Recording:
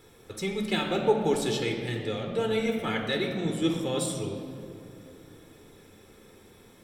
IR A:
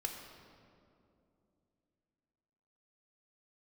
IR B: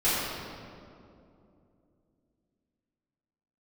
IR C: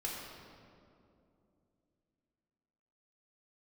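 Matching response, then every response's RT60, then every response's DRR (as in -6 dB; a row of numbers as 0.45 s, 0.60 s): A; 2.7 s, 2.6 s, 2.7 s; 2.0 dB, -13.5 dB, -4.0 dB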